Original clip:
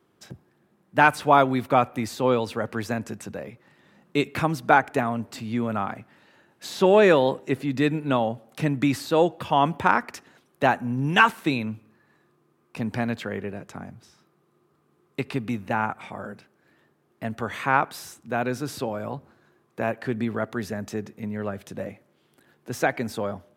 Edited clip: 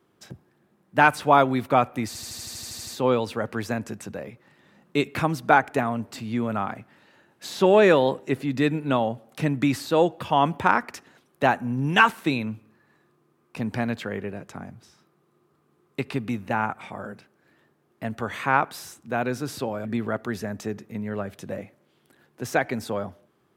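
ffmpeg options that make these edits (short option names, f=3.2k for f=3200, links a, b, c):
-filter_complex "[0:a]asplit=12[a][b][c][d][e][f][g][h][i][j][k][l];[a]atrim=end=2.152[m];[b]atrim=start=2.068:end=2.152[n];[c]atrim=start=2.068:end=2.152[o];[d]atrim=start=2.068:end=2.152[p];[e]atrim=start=2.068:end=2.152[q];[f]atrim=start=2.068:end=2.152[r];[g]atrim=start=2.068:end=2.152[s];[h]atrim=start=2.068:end=2.152[t];[i]atrim=start=2.068:end=2.152[u];[j]atrim=start=2.068:end=2.152[v];[k]atrim=start=2.068:end=19.052[w];[l]atrim=start=20.128[x];[m][n]acrossfade=d=0.004:c1=hsin:c2=hsin[y];[y][o]acrossfade=d=0.004:c1=hsin:c2=hsin[z];[z][p]acrossfade=d=0.004:c1=hsin:c2=hsin[aa];[aa][q]acrossfade=d=0.004:c1=hsin:c2=hsin[ab];[ab][r]acrossfade=d=0.004:c1=hsin:c2=hsin[ac];[ac][s]acrossfade=d=0.004:c1=hsin:c2=hsin[ad];[ad][t]acrossfade=d=0.004:c1=hsin:c2=hsin[ae];[ae][u]acrossfade=d=0.004:c1=hsin:c2=hsin[af];[af][v]acrossfade=d=0.004:c1=hsin:c2=hsin[ag];[ag][w]acrossfade=d=0.004:c1=hsin:c2=hsin[ah];[ah][x]acrossfade=d=0.004:c1=hsin:c2=hsin"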